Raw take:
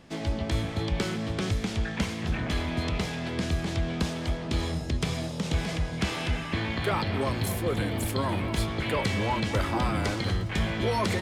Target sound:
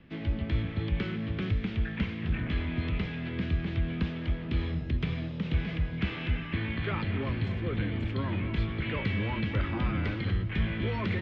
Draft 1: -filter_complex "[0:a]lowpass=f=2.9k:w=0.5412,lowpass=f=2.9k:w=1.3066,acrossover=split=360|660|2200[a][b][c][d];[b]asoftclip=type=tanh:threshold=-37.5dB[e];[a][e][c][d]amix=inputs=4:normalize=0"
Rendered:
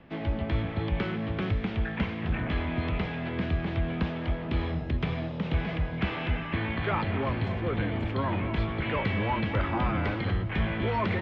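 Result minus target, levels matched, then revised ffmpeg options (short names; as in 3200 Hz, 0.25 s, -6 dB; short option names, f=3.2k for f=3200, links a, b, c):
1000 Hz band +7.0 dB
-filter_complex "[0:a]lowpass=f=2.9k:w=0.5412,lowpass=f=2.9k:w=1.3066,equalizer=f=770:w=0.89:g=-12,acrossover=split=360|660|2200[a][b][c][d];[b]asoftclip=type=tanh:threshold=-37.5dB[e];[a][e][c][d]amix=inputs=4:normalize=0"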